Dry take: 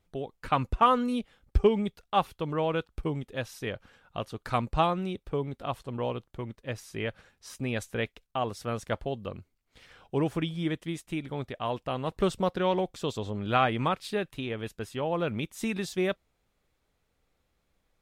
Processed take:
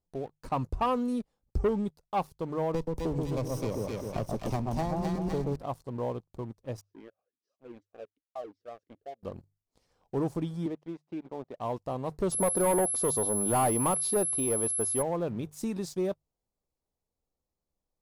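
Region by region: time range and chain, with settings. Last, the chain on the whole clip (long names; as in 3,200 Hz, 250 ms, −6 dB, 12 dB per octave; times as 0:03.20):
0:02.74–0:05.56: lower of the sound and its delayed copy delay 0.35 ms + echo with a time of its own for lows and highs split 1,200 Hz, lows 129 ms, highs 253 ms, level −3 dB + multiband upward and downward compressor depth 100%
0:06.81–0:09.23: high-frequency loss of the air 110 metres + formant filter swept between two vowels a-i 2.6 Hz
0:10.66–0:11.58: high-pass filter 270 Hz + high-frequency loss of the air 330 metres
0:12.31–0:15.01: mid-hump overdrive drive 20 dB, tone 1,400 Hz, clips at −10.5 dBFS + steady tone 11,000 Hz −27 dBFS
whole clip: flat-topped bell 2,200 Hz −14 dB; mains-hum notches 50/100/150 Hz; leveller curve on the samples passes 2; level −8.5 dB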